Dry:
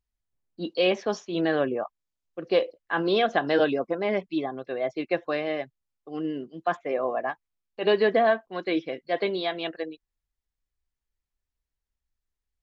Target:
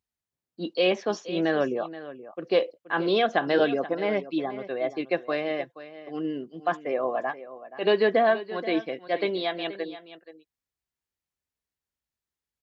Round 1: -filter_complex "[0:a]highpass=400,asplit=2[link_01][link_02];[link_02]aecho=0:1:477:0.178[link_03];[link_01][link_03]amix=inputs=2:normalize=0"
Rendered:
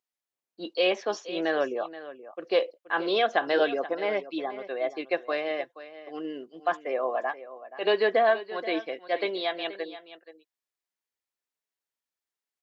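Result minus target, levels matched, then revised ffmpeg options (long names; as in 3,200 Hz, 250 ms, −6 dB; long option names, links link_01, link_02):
125 Hz band −12.5 dB
-filter_complex "[0:a]highpass=110,asplit=2[link_01][link_02];[link_02]aecho=0:1:477:0.178[link_03];[link_01][link_03]amix=inputs=2:normalize=0"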